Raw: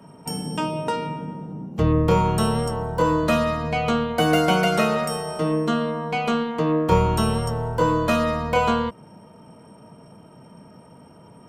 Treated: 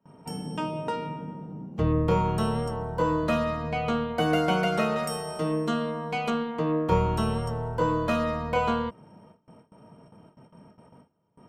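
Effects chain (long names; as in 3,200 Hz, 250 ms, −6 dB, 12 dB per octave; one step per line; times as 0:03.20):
noise gate with hold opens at −37 dBFS
high-shelf EQ 5,200 Hz −9 dB, from 0:04.96 +2 dB, from 0:06.30 −8.5 dB
level −5 dB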